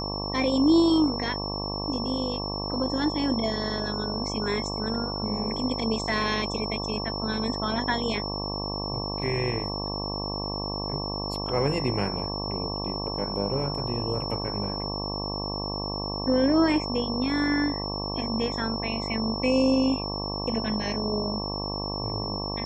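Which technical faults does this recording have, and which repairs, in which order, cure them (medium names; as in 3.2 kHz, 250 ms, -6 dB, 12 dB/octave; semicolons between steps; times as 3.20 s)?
buzz 50 Hz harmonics 23 -33 dBFS
whine 5.4 kHz -33 dBFS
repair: band-stop 5.4 kHz, Q 30; de-hum 50 Hz, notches 23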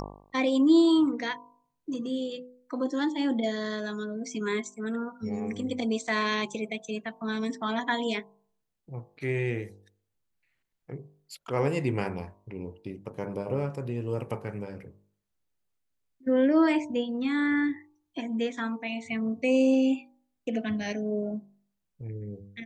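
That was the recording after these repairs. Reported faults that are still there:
nothing left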